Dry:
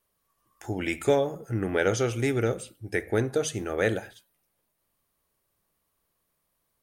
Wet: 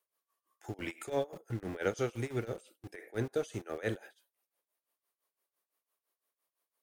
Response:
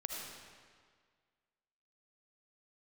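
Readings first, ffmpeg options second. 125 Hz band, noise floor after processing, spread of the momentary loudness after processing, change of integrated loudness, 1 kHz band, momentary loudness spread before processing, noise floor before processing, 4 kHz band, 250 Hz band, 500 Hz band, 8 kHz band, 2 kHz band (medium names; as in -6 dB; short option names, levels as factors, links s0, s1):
-9.5 dB, under -85 dBFS, 11 LU, -10.0 dB, -9.5 dB, 9 LU, -77 dBFS, -11.5 dB, -10.0 dB, -10.0 dB, -14.5 dB, -11.5 dB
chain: -filter_complex "[0:a]tremolo=f=5.9:d=0.86,acrossover=split=310|4200[s0][s1][s2];[s0]aeval=exprs='val(0)*gte(abs(val(0)),0.01)':c=same[s3];[s3][s1][s2]amix=inputs=3:normalize=0,volume=0.501"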